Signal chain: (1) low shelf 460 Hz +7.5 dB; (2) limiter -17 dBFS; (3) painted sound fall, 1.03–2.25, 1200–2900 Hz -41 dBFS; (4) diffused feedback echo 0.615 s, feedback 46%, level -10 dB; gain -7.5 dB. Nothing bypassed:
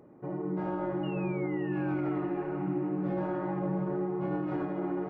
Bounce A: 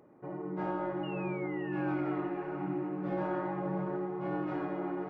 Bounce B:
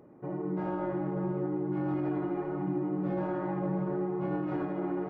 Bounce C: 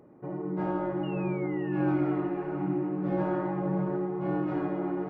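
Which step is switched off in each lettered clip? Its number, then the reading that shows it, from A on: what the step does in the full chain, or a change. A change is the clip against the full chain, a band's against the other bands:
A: 1, 125 Hz band -4.0 dB; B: 3, 2 kHz band -3.0 dB; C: 2, mean gain reduction 1.5 dB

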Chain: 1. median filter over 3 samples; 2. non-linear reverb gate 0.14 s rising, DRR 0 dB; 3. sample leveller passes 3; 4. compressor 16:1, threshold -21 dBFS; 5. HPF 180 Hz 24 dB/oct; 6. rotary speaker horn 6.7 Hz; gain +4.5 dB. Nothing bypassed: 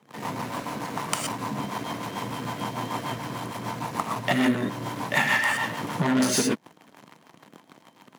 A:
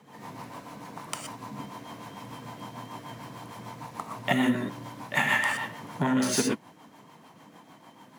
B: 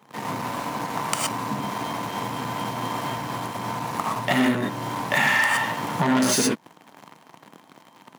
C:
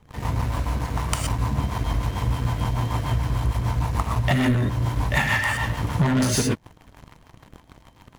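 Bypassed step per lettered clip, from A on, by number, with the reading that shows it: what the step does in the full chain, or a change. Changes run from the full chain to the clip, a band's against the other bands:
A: 3, crest factor change -2.0 dB; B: 6, 1 kHz band +1.5 dB; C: 5, 125 Hz band +13.0 dB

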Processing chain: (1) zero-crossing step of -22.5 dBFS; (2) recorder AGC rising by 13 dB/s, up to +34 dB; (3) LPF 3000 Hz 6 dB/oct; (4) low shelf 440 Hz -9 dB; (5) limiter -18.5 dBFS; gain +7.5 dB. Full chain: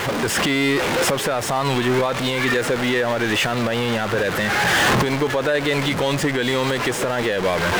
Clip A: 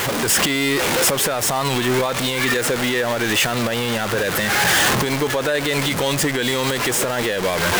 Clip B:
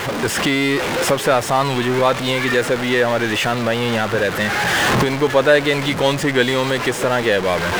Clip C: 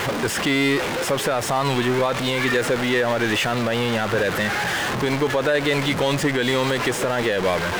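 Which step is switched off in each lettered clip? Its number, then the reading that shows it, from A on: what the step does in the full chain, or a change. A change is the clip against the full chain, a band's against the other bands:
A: 3, 8 kHz band +8.0 dB; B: 5, mean gain reduction 2.0 dB; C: 2, momentary loudness spread change -2 LU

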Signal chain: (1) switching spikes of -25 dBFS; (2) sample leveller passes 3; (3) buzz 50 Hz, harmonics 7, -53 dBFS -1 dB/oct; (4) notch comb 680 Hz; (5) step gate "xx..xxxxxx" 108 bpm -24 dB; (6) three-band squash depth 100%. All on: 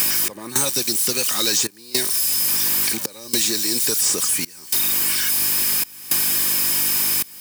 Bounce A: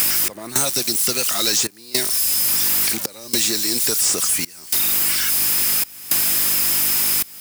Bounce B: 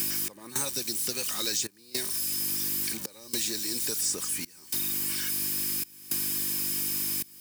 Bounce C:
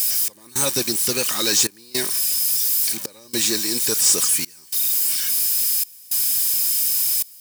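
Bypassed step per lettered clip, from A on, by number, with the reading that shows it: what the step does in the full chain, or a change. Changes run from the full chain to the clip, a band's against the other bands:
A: 4, loudness change +1.0 LU; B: 2, loudness change -10.5 LU; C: 6, crest factor change -3.0 dB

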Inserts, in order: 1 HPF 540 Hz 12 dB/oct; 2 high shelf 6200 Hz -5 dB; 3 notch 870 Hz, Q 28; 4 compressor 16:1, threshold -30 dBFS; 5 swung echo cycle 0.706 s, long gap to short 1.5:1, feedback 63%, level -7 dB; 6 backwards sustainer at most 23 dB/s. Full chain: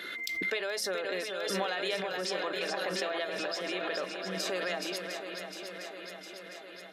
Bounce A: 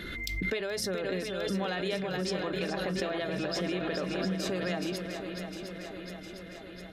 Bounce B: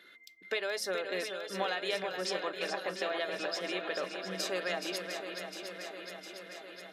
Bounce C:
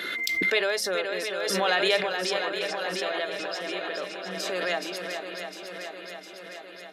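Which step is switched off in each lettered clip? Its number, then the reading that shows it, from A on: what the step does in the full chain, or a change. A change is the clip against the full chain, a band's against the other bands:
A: 1, 125 Hz band +14.0 dB; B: 6, loudness change -2.0 LU; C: 4, mean gain reduction 2.0 dB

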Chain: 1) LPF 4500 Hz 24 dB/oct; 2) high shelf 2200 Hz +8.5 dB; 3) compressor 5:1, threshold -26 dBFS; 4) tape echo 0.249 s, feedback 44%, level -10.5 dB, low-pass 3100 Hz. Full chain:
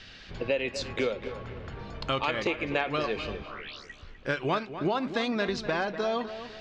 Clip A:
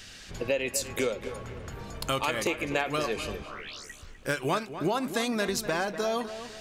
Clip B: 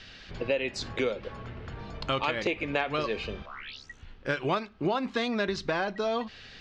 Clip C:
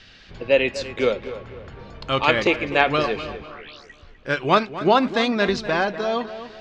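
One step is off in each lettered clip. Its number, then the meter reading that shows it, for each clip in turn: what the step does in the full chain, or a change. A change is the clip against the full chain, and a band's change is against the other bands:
1, 8 kHz band +14.0 dB; 4, echo-to-direct -18.0 dB to none; 3, crest factor change +3.0 dB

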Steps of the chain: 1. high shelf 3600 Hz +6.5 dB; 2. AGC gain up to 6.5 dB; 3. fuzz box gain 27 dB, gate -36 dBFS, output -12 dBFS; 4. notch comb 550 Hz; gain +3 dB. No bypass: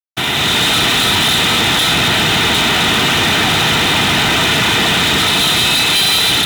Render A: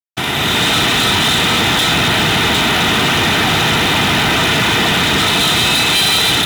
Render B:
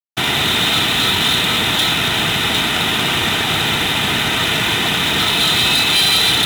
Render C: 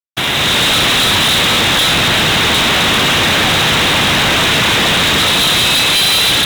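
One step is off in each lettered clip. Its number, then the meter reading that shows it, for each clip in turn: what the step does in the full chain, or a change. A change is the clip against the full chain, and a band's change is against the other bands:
1, 4 kHz band -2.5 dB; 2, 4 kHz band +1.5 dB; 4, crest factor change -3.5 dB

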